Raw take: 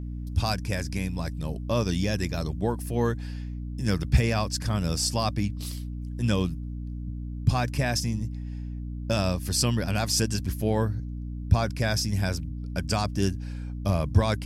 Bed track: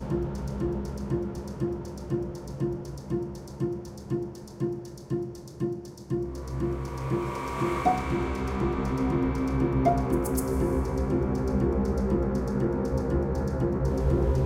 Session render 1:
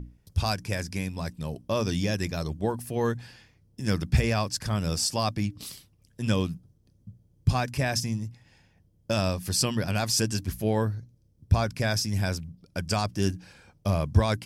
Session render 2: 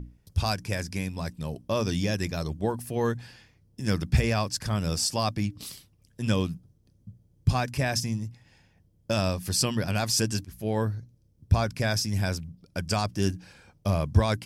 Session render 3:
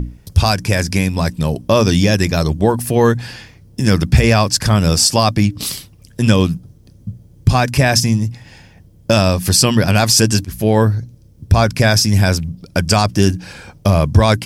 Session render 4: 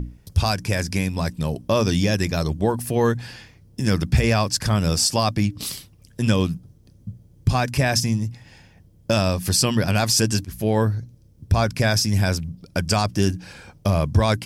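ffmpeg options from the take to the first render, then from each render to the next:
-af "bandreject=f=60:t=h:w=6,bandreject=f=120:t=h:w=6,bandreject=f=180:t=h:w=6,bandreject=f=240:t=h:w=6,bandreject=f=300:t=h:w=6"
-filter_complex "[0:a]asplit=2[a][b];[a]atrim=end=10.45,asetpts=PTS-STARTPTS,afade=t=out:st=10.446:d=0.004:c=hsin:silence=0.112202[c];[b]atrim=start=10.45,asetpts=PTS-STARTPTS,afade=t=in:d=0.52:c=qsin:silence=0.112202[d];[c][d]concat=n=2:v=0:a=1"
-filter_complex "[0:a]asplit=2[a][b];[b]acompressor=threshold=-34dB:ratio=6,volume=0.5dB[c];[a][c]amix=inputs=2:normalize=0,alimiter=level_in=12dB:limit=-1dB:release=50:level=0:latency=1"
-af "volume=-7dB"

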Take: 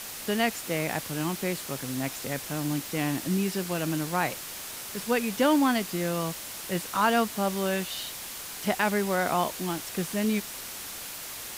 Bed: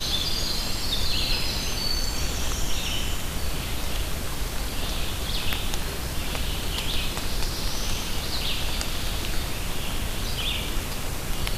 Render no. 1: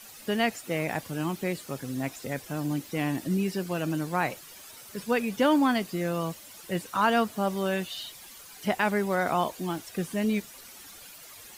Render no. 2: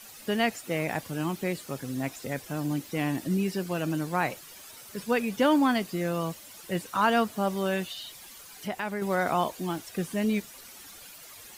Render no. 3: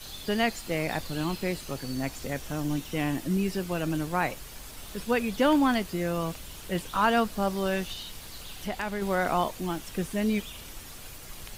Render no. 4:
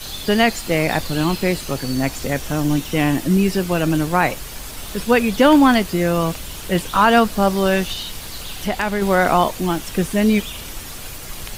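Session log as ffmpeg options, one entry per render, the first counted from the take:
-af "afftdn=nr=12:nf=-39"
-filter_complex "[0:a]asettb=1/sr,asplit=3[a][b][c];[a]atrim=end=7.924[d];[b]atrim=start=7.92:end=9.02,asetpts=PTS-STARTPTS,afade=t=in:d=0.004:c=qsin,afade=t=out:st=1.096:d=0.004:c=qsin,acompressor=threshold=-39dB:ratio=1.5:attack=3.2:release=140:knee=1:detection=peak[e];[c]atrim=start=9.016[f];[d][e]acrossfade=d=0.004:c1=hsin:c2=qsin[g];[g][f]acrossfade=d=0.004:c1=qsin:c2=hsin"
-filter_complex "[1:a]volume=-17dB[a];[0:a][a]amix=inputs=2:normalize=0"
-af "volume=11dB,alimiter=limit=-3dB:level=0:latency=1"

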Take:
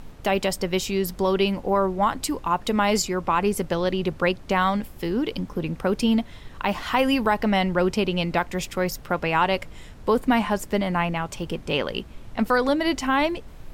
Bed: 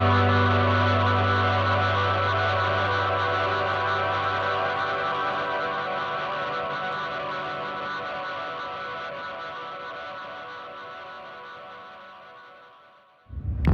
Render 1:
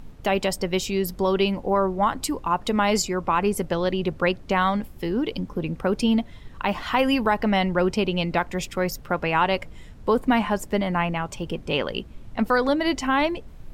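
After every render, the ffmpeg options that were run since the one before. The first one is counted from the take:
-af "afftdn=nr=6:nf=-43"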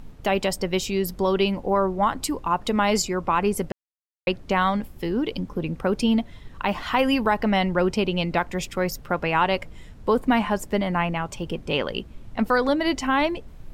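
-filter_complex "[0:a]asplit=3[a][b][c];[a]atrim=end=3.72,asetpts=PTS-STARTPTS,afade=t=out:st=3.716:d=0.004:c=hsin[d];[b]atrim=start=3.72:end=4.27,asetpts=PTS-STARTPTS,volume=0[e];[c]atrim=start=4.27,asetpts=PTS-STARTPTS,afade=t=in:d=0.004:c=hsin[f];[d][e][f]concat=n=3:v=0:a=1"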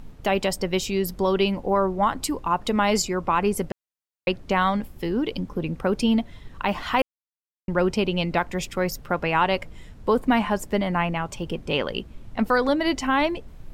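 -filter_complex "[0:a]asplit=3[a][b][c];[a]atrim=end=7.02,asetpts=PTS-STARTPTS,afade=t=out:st=7.016:d=0.004:c=hsin[d];[b]atrim=start=7.02:end=7.68,asetpts=PTS-STARTPTS,volume=0[e];[c]atrim=start=7.68,asetpts=PTS-STARTPTS,afade=t=in:d=0.004:c=hsin[f];[d][e][f]concat=n=3:v=0:a=1"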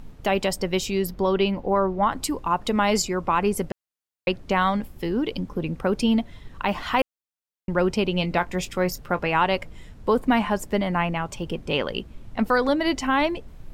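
-filter_complex "[0:a]asettb=1/sr,asplit=3[a][b][c];[a]atrim=end=1.074[d];[b]atrim=start=1.07:end=2.12,asetpts=PTS-STARTPTS,afade=t=in:d=0.004:c=qsin,afade=t=out:st=1.046:d=0.004:c=qsin,equalizer=f=9.1k:t=o:w=1.2:g=-11[e];[c]atrim=start=2.116[f];[d][e]acrossfade=d=0.004:c1=hsin:c2=qsin[g];[g][f]acrossfade=d=0.004:c1=qsin:c2=hsin,asettb=1/sr,asplit=3[h][i][j];[h]atrim=end=8.134[k];[i]atrim=start=8.13:end=9.32,asetpts=PTS-STARTPTS,afade=t=in:d=0.004:c=qsin,afade=t=out:st=1.186:d=0.004:c=qsin,asplit=2[l][m];[m]adelay=22,volume=-13.5dB[n];[l][n]amix=inputs=2:normalize=0,atrim=end_sample=52479[o];[j]atrim=start=9.316[p];[k][o]acrossfade=d=0.004:c1=hsin:c2=qsin[q];[q][p]acrossfade=d=0.004:c1=qsin:c2=hsin"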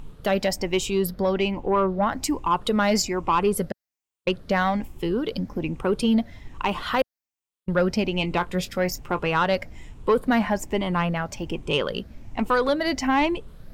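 -af "afftfilt=real='re*pow(10,7/40*sin(2*PI*(0.67*log(max(b,1)*sr/1024/100)/log(2)-(1.2)*(pts-256)/sr)))':imag='im*pow(10,7/40*sin(2*PI*(0.67*log(max(b,1)*sr/1024/100)/log(2)-(1.2)*(pts-256)/sr)))':win_size=1024:overlap=0.75,asoftclip=type=tanh:threshold=-11dB"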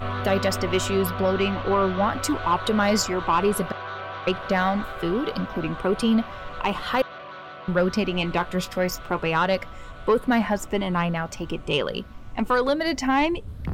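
-filter_complex "[1:a]volume=-9dB[a];[0:a][a]amix=inputs=2:normalize=0"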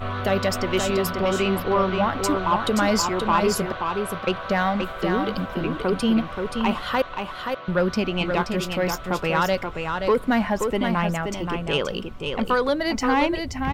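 -af "aecho=1:1:527:0.531"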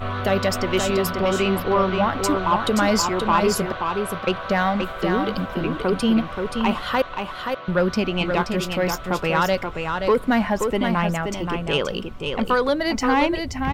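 -af "volume=1.5dB"

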